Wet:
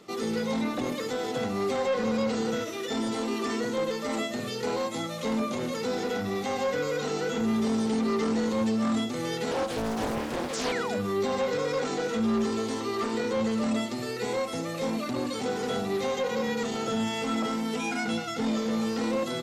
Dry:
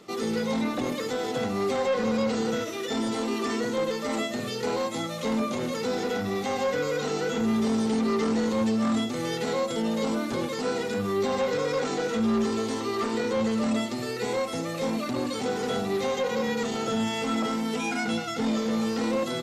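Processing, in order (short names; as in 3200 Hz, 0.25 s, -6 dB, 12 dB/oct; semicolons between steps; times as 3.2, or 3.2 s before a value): 10.53–10.97 painted sound fall 530–7600 Hz -34 dBFS; 9.51–10.72 Doppler distortion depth 0.97 ms; gain -1.5 dB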